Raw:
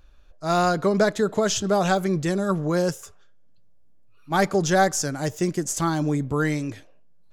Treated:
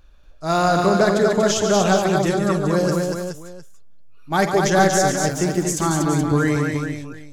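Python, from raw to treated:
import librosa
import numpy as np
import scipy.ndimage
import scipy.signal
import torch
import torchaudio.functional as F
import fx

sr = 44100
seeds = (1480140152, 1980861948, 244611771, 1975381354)

y = fx.echo_multitap(x, sr, ms=(49, 142, 238, 423, 710), db=(-12.0, -8.0, -4.0, -8.0, -19.0))
y = y * 10.0 ** (2.0 / 20.0)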